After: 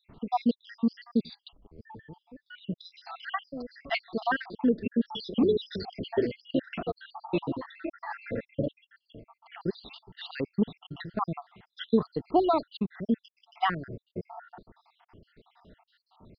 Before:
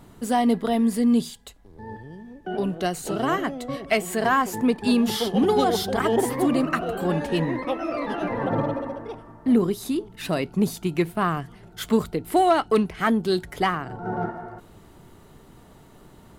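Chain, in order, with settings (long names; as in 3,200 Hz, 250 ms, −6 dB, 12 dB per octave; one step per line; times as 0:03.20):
time-frequency cells dropped at random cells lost 72%
downsampling to 11,025 Hz
level −2.5 dB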